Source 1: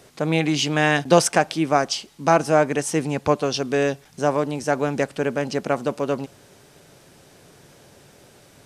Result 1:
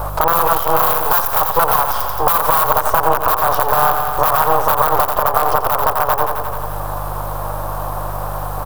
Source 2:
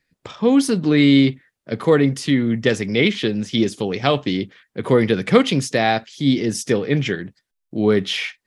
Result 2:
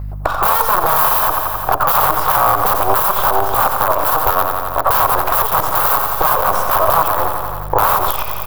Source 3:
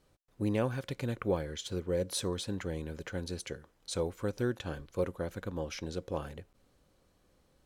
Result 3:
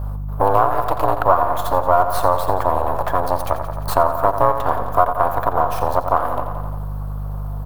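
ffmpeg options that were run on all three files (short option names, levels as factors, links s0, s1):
-filter_complex "[0:a]lowshelf=f=64:g=9.5,afreqshift=180,aeval=exprs='max(val(0),0)':c=same,acrossover=split=8500[s0][s1];[s1]acompressor=threshold=0.00141:ratio=4:attack=1:release=60[s2];[s0][s2]amix=inputs=2:normalize=0,aeval=exprs='(mod(5.96*val(0)+1,2)-1)/5.96':c=same,aeval=exprs='val(0)+0.00398*(sin(2*PI*50*n/s)+sin(2*PI*2*50*n/s)/2+sin(2*PI*3*50*n/s)/3+sin(2*PI*4*50*n/s)/4+sin(2*PI*5*50*n/s)/5)':c=same,firequalizer=gain_entry='entry(120,0);entry(220,-12);entry(360,-8);entry(520,4);entry(1100,13);entry(2000,-11);entry(3500,-10);entry(6500,-13);entry(14000,11)':delay=0.05:min_phase=1,asplit=2[s3][s4];[s4]aecho=0:1:87|174|261|348|435|522|609:0.282|0.166|0.0981|0.0579|0.0342|0.0201|0.0119[s5];[s3][s5]amix=inputs=2:normalize=0,acompressor=threshold=0.00562:ratio=2,alimiter=level_in=21.1:limit=0.891:release=50:level=0:latency=1,volume=0.891"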